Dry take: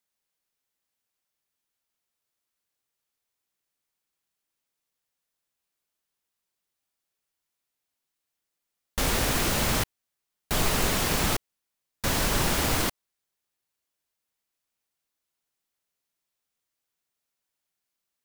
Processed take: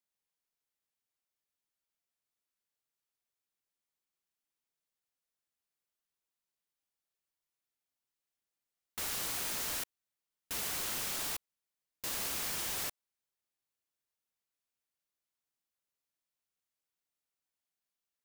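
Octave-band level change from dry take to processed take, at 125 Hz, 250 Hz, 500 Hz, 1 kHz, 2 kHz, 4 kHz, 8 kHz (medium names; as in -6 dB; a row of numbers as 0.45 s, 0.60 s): -24.0 dB, -21.0 dB, -18.0 dB, -15.5 dB, -13.0 dB, -10.5 dB, -7.5 dB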